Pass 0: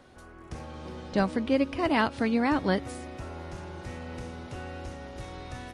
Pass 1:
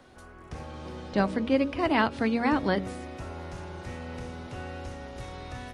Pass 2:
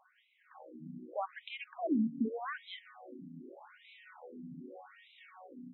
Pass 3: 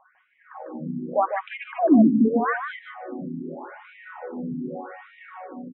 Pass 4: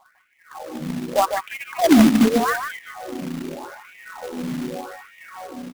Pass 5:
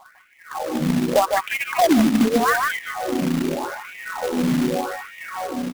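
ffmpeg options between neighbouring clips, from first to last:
ffmpeg -i in.wav -filter_complex "[0:a]bandreject=frequency=47.16:width_type=h:width=4,bandreject=frequency=94.32:width_type=h:width=4,bandreject=frequency=141.48:width_type=h:width=4,bandreject=frequency=188.64:width_type=h:width=4,bandreject=frequency=235.8:width_type=h:width=4,bandreject=frequency=282.96:width_type=h:width=4,bandreject=frequency=330.12:width_type=h:width=4,bandreject=frequency=377.28:width_type=h:width=4,bandreject=frequency=424.44:width_type=h:width=4,bandreject=frequency=471.6:width_type=h:width=4,bandreject=frequency=518.76:width_type=h:width=4,bandreject=frequency=565.92:width_type=h:width=4,bandreject=frequency=613.08:width_type=h:width=4,acrossover=split=170|4800[link_01][link_02][link_03];[link_03]alimiter=level_in=23dB:limit=-24dB:level=0:latency=1:release=144,volume=-23dB[link_04];[link_01][link_02][link_04]amix=inputs=3:normalize=0,volume=1dB" out.wav
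ffmpeg -i in.wav -af "bass=frequency=250:gain=10,treble=frequency=4000:gain=10,afftfilt=real='re*between(b*sr/1024,210*pow(2900/210,0.5+0.5*sin(2*PI*0.83*pts/sr))/1.41,210*pow(2900/210,0.5+0.5*sin(2*PI*0.83*pts/sr))*1.41)':imag='im*between(b*sr/1024,210*pow(2900/210,0.5+0.5*sin(2*PI*0.83*pts/sr))/1.41,210*pow(2900/210,0.5+0.5*sin(2*PI*0.83*pts/sr))*1.41)':win_size=1024:overlap=0.75,volume=-6.5dB" out.wav
ffmpeg -i in.wav -af "lowpass=frequency=2000:width=0.5412,lowpass=frequency=2000:width=1.3066,dynaudnorm=framelen=110:gausssize=7:maxgain=6.5dB,aecho=1:1:149:0.447,volume=9dB" out.wav
ffmpeg -i in.wav -af "acrusher=bits=2:mode=log:mix=0:aa=0.000001,volume=2.5dB" out.wav
ffmpeg -i in.wav -af "acompressor=threshold=-21dB:ratio=12,volume=8dB" out.wav

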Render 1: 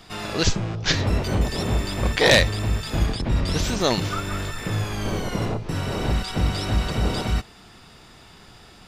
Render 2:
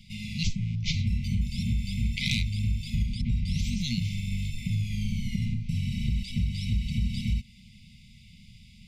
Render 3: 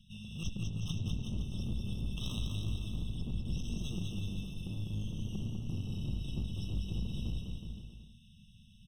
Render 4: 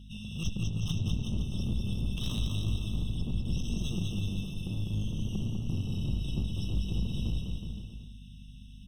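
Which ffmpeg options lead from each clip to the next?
ffmpeg -i in.wav -af "afftfilt=real='re*(1-between(b*sr/4096,240,2000))':imag='im*(1-between(b*sr/4096,240,2000))':win_size=4096:overlap=0.75,highshelf=frequency=2700:gain=-10.5,acompressor=threshold=-23dB:ratio=6" out.wav
ffmpeg -i in.wav -filter_complex "[0:a]aeval=exprs='clip(val(0),-1,0.0266)':channel_layout=same,asplit=2[link_01][link_02];[link_02]aecho=0:1:200|370|514.5|637.3|741.7:0.631|0.398|0.251|0.158|0.1[link_03];[link_01][link_03]amix=inputs=2:normalize=0,afftfilt=real='re*eq(mod(floor(b*sr/1024/1300),2),0)':imag='im*eq(mod(floor(b*sr/1024/1300),2),0)':win_size=1024:overlap=0.75,volume=-8.5dB" out.wav
ffmpeg -i in.wav -filter_complex "[0:a]acrossover=split=340[link_01][link_02];[link_02]asoftclip=type=hard:threshold=-38.5dB[link_03];[link_01][link_03]amix=inputs=2:normalize=0,aeval=exprs='val(0)+0.00251*(sin(2*PI*50*n/s)+sin(2*PI*2*50*n/s)/2+sin(2*PI*3*50*n/s)/3+sin(2*PI*4*50*n/s)/4+sin(2*PI*5*50*n/s)/5)':channel_layout=same,volume=5dB" out.wav

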